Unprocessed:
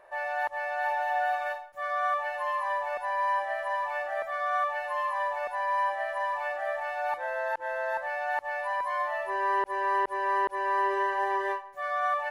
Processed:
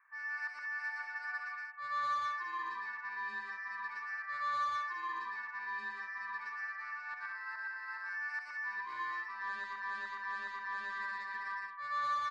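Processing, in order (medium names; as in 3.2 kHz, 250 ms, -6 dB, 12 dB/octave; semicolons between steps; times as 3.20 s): elliptic band-pass 1.1–2.3 kHz, stop band 50 dB; saturation -30 dBFS, distortion -14 dB; on a send: loudspeakers at several distances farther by 40 m -1 dB, 62 m -5 dB; on the sum: trim -6 dB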